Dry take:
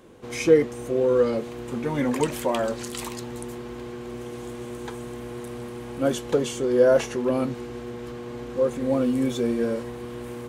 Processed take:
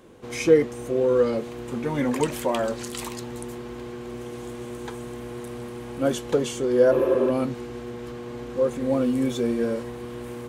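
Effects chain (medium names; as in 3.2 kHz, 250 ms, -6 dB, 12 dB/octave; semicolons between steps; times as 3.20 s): spectral replace 6.94–7.24 s, 260–11000 Hz after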